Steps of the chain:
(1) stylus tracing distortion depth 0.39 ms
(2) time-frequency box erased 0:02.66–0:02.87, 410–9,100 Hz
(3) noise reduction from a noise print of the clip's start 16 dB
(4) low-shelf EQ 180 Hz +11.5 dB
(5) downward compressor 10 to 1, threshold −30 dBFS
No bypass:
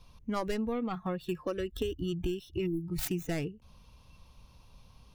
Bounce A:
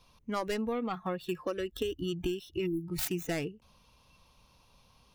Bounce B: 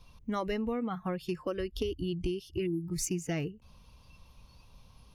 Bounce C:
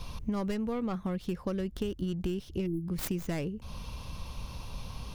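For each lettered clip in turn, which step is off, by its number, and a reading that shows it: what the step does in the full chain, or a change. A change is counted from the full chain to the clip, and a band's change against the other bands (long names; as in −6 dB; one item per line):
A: 4, 125 Hz band −5.0 dB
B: 1, 8 kHz band +6.5 dB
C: 3, 125 Hz band +4.0 dB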